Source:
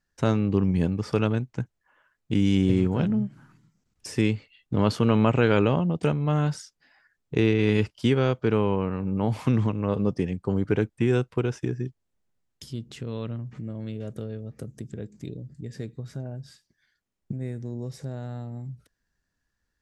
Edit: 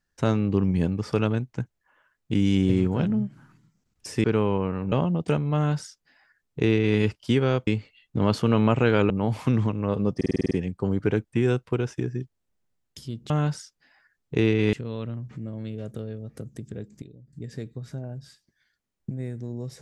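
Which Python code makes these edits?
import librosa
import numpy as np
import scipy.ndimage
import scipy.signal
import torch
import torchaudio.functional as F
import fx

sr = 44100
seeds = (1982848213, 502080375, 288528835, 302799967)

y = fx.edit(x, sr, fx.swap(start_s=4.24, length_s=1.43, other_s=8.42, other_length_s=0.68),
    fx.duplicate(start_s=6.3, length_s=1.43, to_s=12.95),
    fx.stutter(start_s=10.16, slice_s=0.05, count=8),
    fx.clip_gain(start_s=15.24, length_s=0.31, db=-11.0), tone=tone)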